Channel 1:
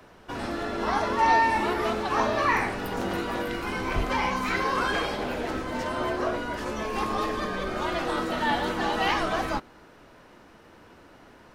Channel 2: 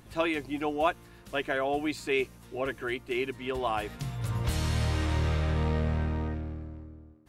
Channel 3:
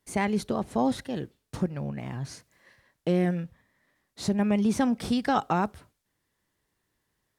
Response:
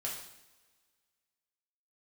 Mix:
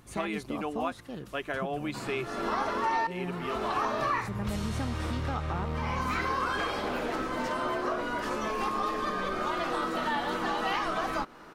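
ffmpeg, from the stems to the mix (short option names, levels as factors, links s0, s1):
-filter_complex "[0:a]equalizer=f=71:t=o:w=0.9:g=-11.5,adelay=1650,volume=1.19[s0];[1:a]volume=0.75[s1];[2:a]volume=0.398,asplit=2[s2][s3];[s3]apad=whole_len=581990[s4];[s0][s4]sidechaincompress=threshold=0.00447:ratio=12:attack=5.7:release=323[s5];[s5][s1][s2]amix=inputs=3:normalize=0,equalizer=f=1200:t=o:w=0.36:g=6,acompressor=threshold=0.0355:ratio=3"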